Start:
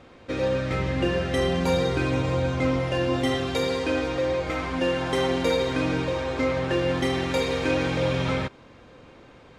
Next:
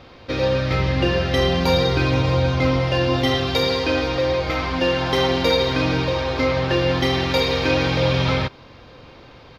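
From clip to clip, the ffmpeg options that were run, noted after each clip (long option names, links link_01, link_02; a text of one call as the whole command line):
ffmpeg -i in.wav -af "firequalizer=gain_entry='entry(130,0);entry(190,-5);entry(910,-1);entry(1600,-3);entry(4800,5);entry(8400,-18);entry(12000,1)':delay=0.05:min_phase=1,volume=7.5dB" out.wav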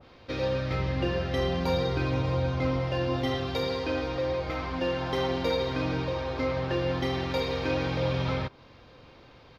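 ffmpeg -i in.wav -af "adynamicequalizer=threshold=0.02:dfrequency=1800:dqfactor=0.7:tfrequency=1800:tqfactor=0.7:attack=5:release=100:ratio=0.375:range=2.5:mode=cutabove:tftype=highshelf,volume=-8.5dB" out.wav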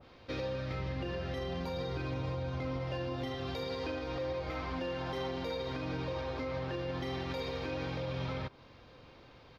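ffmpeg -i in.wav -af "alimiter=level_in=1dB:limit=-24dB:level=0:latency=1:release=116,volume=-1dB,volume=-3.5dB" out.wav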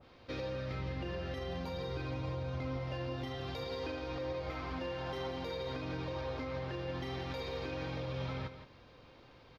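ffmpeg -i in.wav -af "aecho=1:1:170:0.299,volume=-2.5dB" out.wav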